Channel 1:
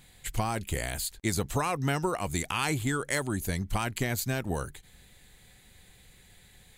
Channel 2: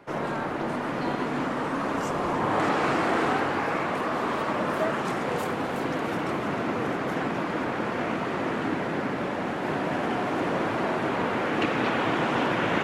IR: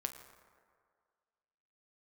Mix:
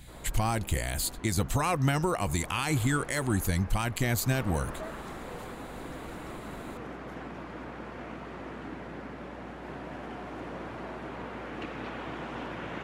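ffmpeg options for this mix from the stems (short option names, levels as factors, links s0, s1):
-filter_complex "[0:a]bandreject=f=420:w=12,volume=1.33[s0];[1:a]volume=0.211,afade=t=in:st=4.15:d=0.35:silence=0.446684[s1];[s0][s1]amix=inputs=2:normalize=0,aeval=exprs='val(0)+0.002*(sin(2*PI*60*n/s)+sin(2*PI*2*60*n/s)/2+sin(2*PI*3*60*n/s)/3+sin(2*PI*4*60*n/s)/4+sin(2*PI*5*60*n/s)/5)':c=same,lowshelf=f=110:g=5.5,alimiter=limit=0.141:level=0:latency=1:release=77"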